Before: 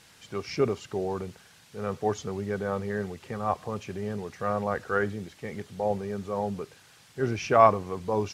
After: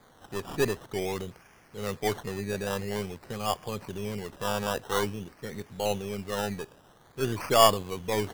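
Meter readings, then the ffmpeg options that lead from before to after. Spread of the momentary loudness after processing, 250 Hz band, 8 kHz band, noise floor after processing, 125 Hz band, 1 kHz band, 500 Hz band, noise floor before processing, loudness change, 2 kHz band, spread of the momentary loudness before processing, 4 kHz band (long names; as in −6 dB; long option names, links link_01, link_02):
15 LU, −2.0 dB, +9.5 dB, −58 dBFS, −1.5 dB, −2.0 dB, −1.5 dB, −56 dBFS, −1.0 dB, 0.0 dB, 14 LU, +11.5 dB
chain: -af "aeval=exprs='if(lt(val(0),0),0.708*val(0),val(0))':channel_layout=same,acrusher=samples=16:mix=1:aa=0.000001:lfo=1:lforange=9.6:lforate=0.49"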